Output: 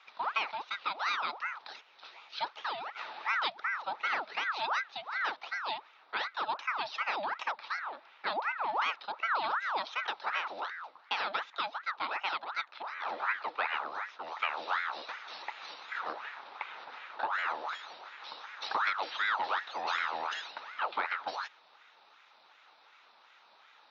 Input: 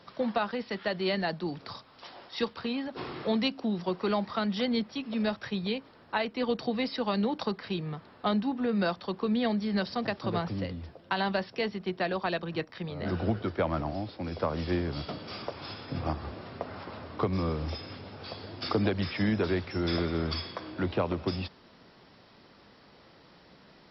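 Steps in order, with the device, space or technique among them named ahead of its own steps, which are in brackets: voice changer toy (ring modulator with a swept carrier 1100 Hz, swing 65%, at 2.7 Hz; speaker cabinet 550–5000 Hz, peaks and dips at 870 Hz +7 dB, 1300 Hz +6 dB, 2500 Hz +4 dB, 3800 Hz +9 dB); gain -4.5 dB

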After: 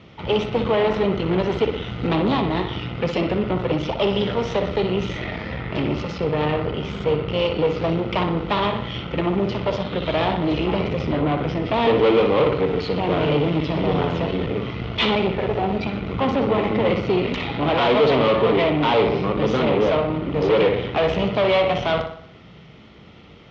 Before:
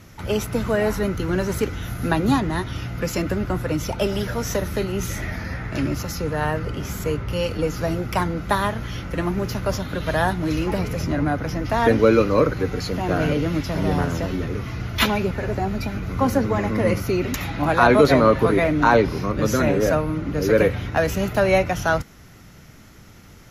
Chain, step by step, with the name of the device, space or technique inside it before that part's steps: analogue delay pedal into a guitar amplifier (analogue delay 60 ms, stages 2048, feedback 52%, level -8.5 dB; tube stage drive 22 dB, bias 0.75; speaker cabinet 81–3700 Hz, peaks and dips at 100 Hz -8 dB, 270 Hz -3 dB, 450 Hz +4 dB, 1600 Hz -10 dB, 3200 Hz +6 dB); gain +7 dB

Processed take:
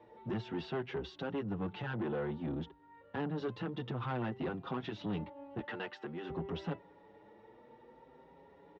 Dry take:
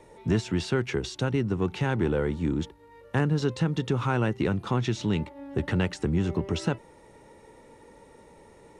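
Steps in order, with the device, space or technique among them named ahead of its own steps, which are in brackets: 5.6–6.3 weighting filter A; barber-pole flanger into a guitar amplifier (endless flanger 6.4 ms +0.54 Hz; soft clip -27.5 dBFS, distortion -11 dB; speaker cabinet 81–3600 Hz, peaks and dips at 86 Hz -6 dB, 130 Hz -3 dB, 780 Hz +3 dB, 2300 Hz -6 dB); notch 4200 Hz, Q 28; gain -3.5 dB

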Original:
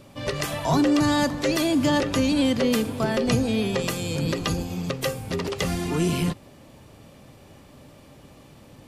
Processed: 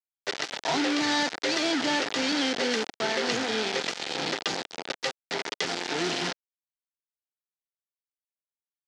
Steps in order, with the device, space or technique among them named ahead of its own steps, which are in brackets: hand-held game console (bit-crush 4-bit; speaker cabinet 430–5700 Hz, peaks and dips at 570 Hz -7 dB, 1100 Hz -9 dB, 2600 Hz -3 dB)

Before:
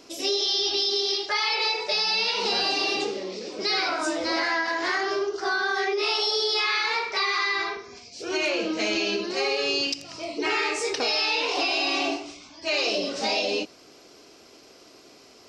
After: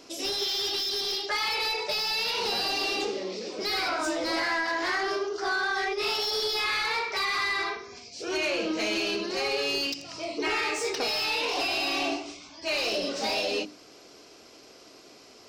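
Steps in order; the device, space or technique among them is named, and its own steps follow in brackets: saturation between pre-emphasis and de-emphasis (high shelf 4100 Hz +11 dB; soft clip -19.5 dBFS, distortion -12 dB; high shelf 4100 Hz -11 dB); notches 50/100/150/200/250/300/350/400 Hz

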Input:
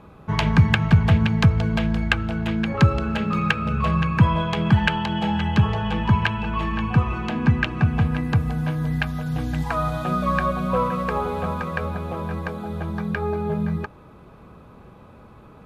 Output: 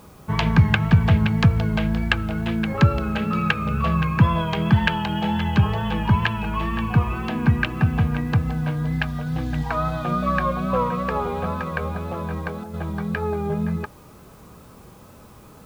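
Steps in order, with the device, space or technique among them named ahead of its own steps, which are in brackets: worn cassette (LPF 6000 Hz; wow and flutter; level dips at 12.64, 96 ms -6 dB; white noise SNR 35 dB)

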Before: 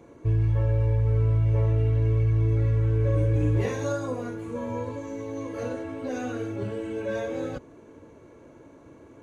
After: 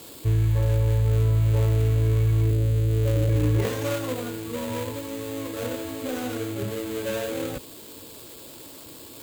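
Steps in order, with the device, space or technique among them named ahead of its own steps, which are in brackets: 2.51–3.29 elliptic low-pass 680 Hz; budget class-D amplifier (switching dead time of 0.24 ms; switching spikes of -26.5 dBFS); gain +1.5 dB

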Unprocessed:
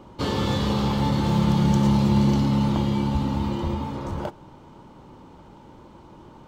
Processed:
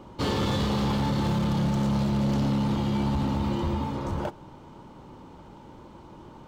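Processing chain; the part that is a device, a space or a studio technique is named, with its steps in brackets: limiter into clipper (limiter -15.5 dBFS, peak gain reduction 6.5 dB; hard clip -21.5 dBFS, distortion -13 dB)

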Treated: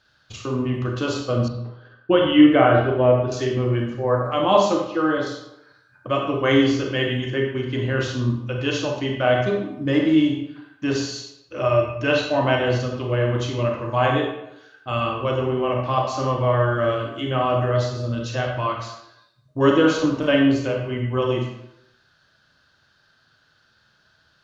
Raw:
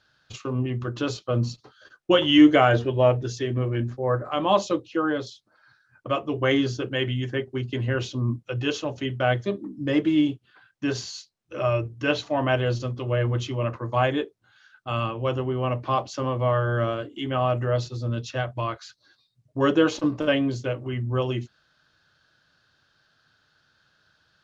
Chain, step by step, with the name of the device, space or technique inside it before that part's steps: bathroom (reverb RT60 0.85 s, pre-delay 30 ms, DRR 0.5 dB); 1.48–3.32 air absorption 370 m; gain +1.5 dB

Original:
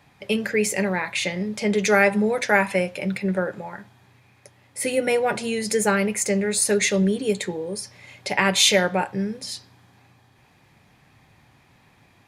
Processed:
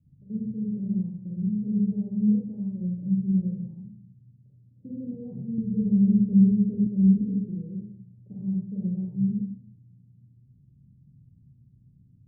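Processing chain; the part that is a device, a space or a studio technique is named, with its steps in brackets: club heard from the street (limiter -13 dBFS, peak gain reduction 9 dB; LPF 210 Hz 24 dB/oct; reverb RT60 0.60 s, pre-delay 35 ms, DRR -4 dB); 5.58–6.87 tilt shelf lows +7.5 dB, about 830 Hz; gain -3 dB

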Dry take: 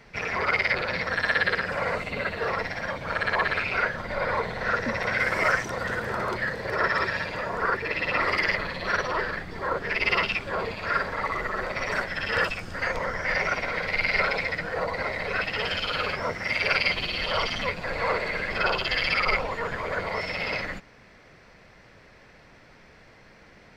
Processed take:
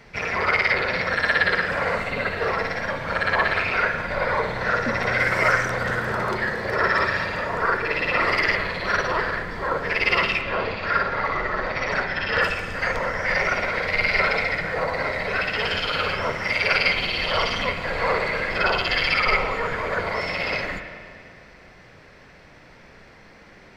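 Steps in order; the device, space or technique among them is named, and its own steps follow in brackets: 10.41–12.42 LPF 5700 Hz 24 dB/oct; spring tank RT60 1.8 s, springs 33/51 ms, chirp 25 ms, DRR 6 dB; compressed reverb return (on a send at -12.5 dB: reverb RT60 2.3 s, pre-delay 39 ms + compressor, threshold -34 dBFS, peak gain reduction 13.5 dB); on the sum: gain +3 dB

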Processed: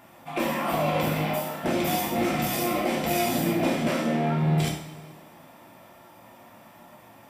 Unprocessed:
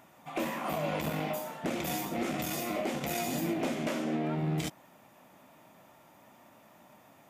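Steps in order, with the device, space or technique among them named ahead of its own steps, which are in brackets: notch 6600 Hz, Q 7.1; two-slope reverb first 0.53 s, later 2.1 s, from -18 dB, DRR -2 dB; saturated reverb return (on a send at -14 dB: reverb RT60 1.4 s, pre-delay 12 ms + soft clip -22.5 dBFS, distortion -17 dB); on the sum: gain +3.5 dB

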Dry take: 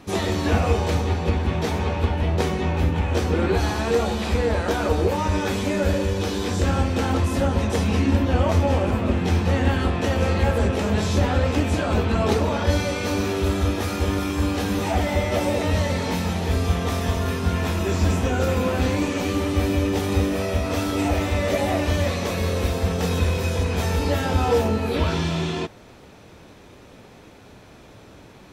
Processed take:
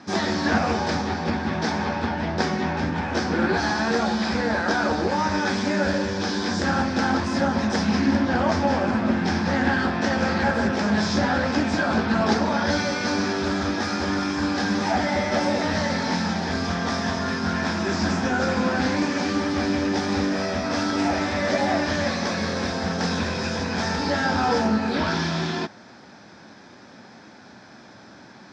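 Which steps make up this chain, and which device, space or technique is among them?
full-range speaker at full volume (Doppler distortion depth 0.26 ms; speaker cabinet 160–6600 Hz, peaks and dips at 220 Hz +6 dB, 450 Hz -7 dB, 820 Hz +4 dB, 1600 Hz +9 dB, 2800 Hz -6 dB, 5100 Hz +10 dB)

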